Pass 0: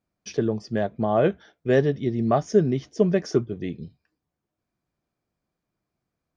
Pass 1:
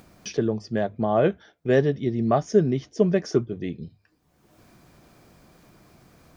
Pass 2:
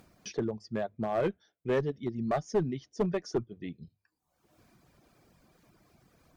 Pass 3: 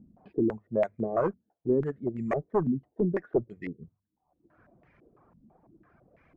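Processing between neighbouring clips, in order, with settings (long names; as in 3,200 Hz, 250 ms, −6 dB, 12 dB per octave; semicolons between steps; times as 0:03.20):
mains-hum notches 50/100 Hz; upward compression, threshold −31 dBFS
reverb reduction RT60 1.1 s; asymmetric clip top −17.5 dBFS; level −7 dB
bad sample-rate conversion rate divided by 6×, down filtered, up hold; low-pass on a step sequencer 6 Hz 230–2,100 Hz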